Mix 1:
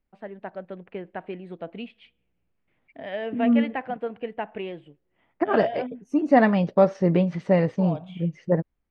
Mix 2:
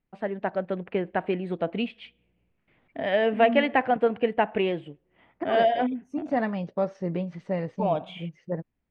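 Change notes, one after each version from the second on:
first voice +8.0 dB
second voice −9.0 dB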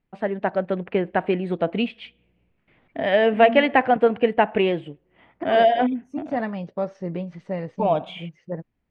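first voice +5.0 dB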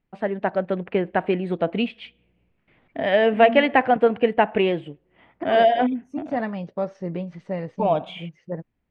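nothing changed

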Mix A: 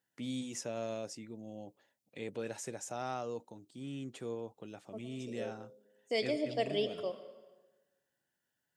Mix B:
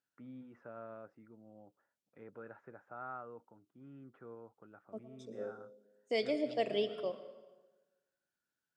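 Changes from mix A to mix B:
first voice: add transistor ladder low-pass 1,500 Hz, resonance 70%
second voice: add low-pass filter 3,700 Hz 6 dB per octave

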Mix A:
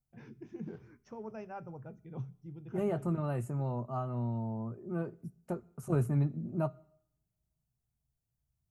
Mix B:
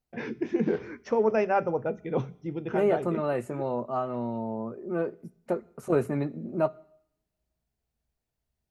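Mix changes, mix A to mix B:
first voice +11.0 dB
master: add octave-band graphic EQ 125/250/500/1,000/2,000/4,000 Hz −8/+5/+11/+3/+10/+8 dB

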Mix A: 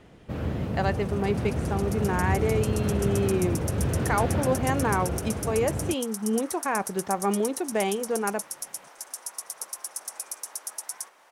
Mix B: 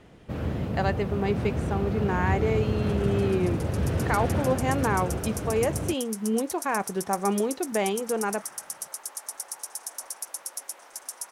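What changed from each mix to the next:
second sound: entry +1.95 s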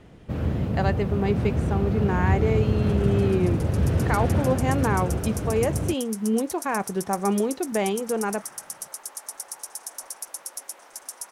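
master: add low-shelf EQ 270 Hz +5.5 dB

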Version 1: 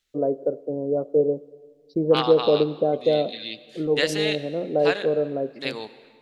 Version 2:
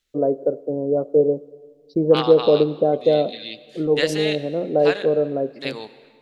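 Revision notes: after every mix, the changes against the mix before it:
first voice +3.5 dB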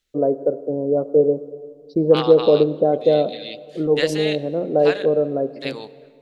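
first voice: send +8.5 dB
second voice: send −6.0 dB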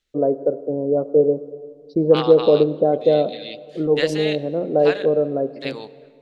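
master: add high-shelf EQ 9,200 Hz −9.5 dB

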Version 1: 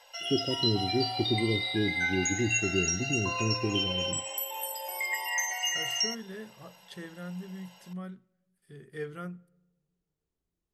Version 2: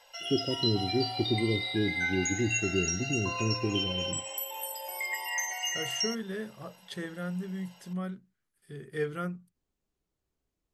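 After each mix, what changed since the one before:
second voice +6.5 dB
reverb: off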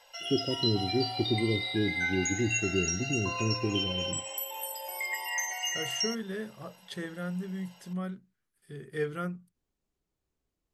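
nothing changed

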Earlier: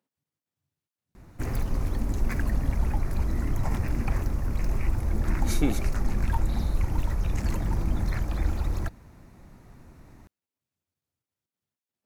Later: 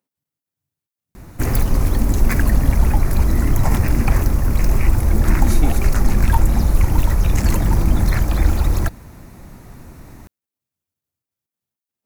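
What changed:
background +11.0 dB
master: add high-shelf EQ 8,900 Hz +10.5 dB

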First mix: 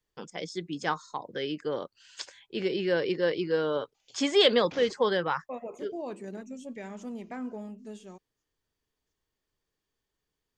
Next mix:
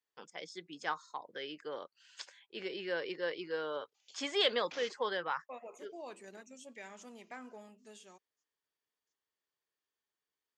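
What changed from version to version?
first voice: add high-shelf EQ 2,600 Hz −9.5 dB
master: add high-pass filter 1,500 Hz 6 dB per octave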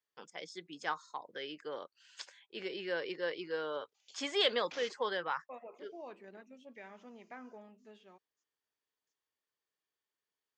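second voice: add high-frequency loss of the air 310 metres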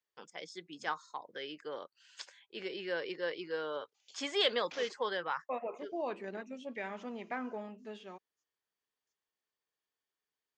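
second voice +10.5 dB

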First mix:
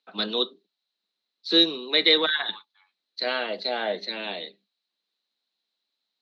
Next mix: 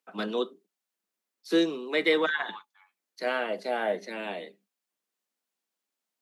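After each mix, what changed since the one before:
second voice +4.5 dB
master: remove low-pass with resonance 4,000 Hz, resonance Q 9.7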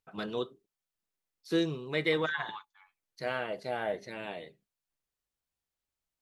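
first voice −5.0 dB
master: remove Butterworth high-pass 180 Hz 96 dB per octave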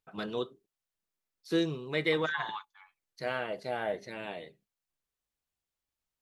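second voice +4.0 dB

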